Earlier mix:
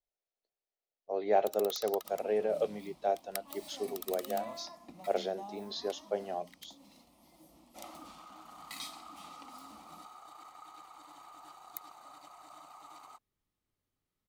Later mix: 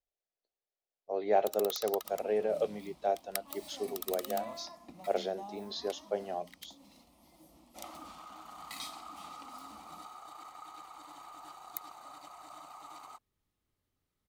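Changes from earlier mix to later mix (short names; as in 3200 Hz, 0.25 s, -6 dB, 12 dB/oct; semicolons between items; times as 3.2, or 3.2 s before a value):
first sound +3.0 dB; master: add bell 68 Hz +6 dB 0.57 oct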